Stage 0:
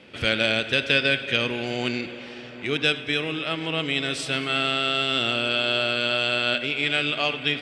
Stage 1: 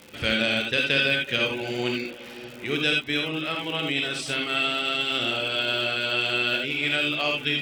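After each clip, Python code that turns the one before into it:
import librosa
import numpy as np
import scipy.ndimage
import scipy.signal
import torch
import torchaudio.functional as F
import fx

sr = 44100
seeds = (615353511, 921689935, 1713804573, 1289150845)

y = fx.dereverb_blind(x, sr, rt60_s=0.56)
y = fx.rev_gated(y, sr, seeds[0], gate_ms=100, shape='rising', drr_db=1.0)
y = fx.dmg_crackle(y, sr, seeds[1], per_s=170.0, level_db=-32.0)
y = y * librosa.db_to_amplitude(-2.5)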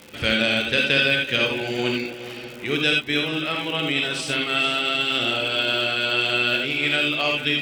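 y = x + 10.0 ** (-13.0 / 20.0) * np.pad(x, (int(446 * sr / 1000.0), 0))[:len(x)]
y = y * librosa.db_to_amplitude(3.0)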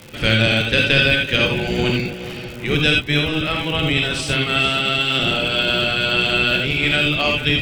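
y = fx.octave_divider(x, sr, octaves=1, level_db=3.0)
y = y * librosa.db_to_amplitude(3.5)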